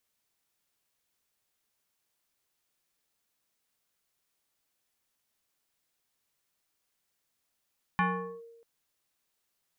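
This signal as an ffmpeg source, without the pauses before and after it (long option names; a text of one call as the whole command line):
ffmpeg -f lavfi -i "aevalsrc='0.0841*pow(10,-3*t/1.08)*sin(2*PI*463*t+2.4*clip(1-t/0.43,0,1)*sin(2*PI*1.39*463*t))':duration=0.64:sample_rate=44100" out.wav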